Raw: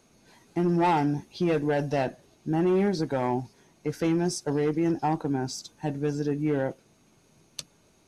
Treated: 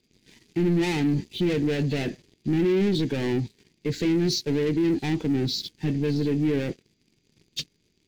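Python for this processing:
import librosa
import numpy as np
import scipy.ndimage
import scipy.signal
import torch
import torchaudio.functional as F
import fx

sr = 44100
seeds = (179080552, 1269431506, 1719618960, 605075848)

y = fx.freq_compress(x, sr, knee_hz=2600.0, ratio=1.5)
y = fx.leveller(y, sr, passes=3)
y = fx.band_shelf(y, sr, hz=910.0, db=-14.5, octaves=1.7)
y = y * librosa.db_to_amplitude(-1.5)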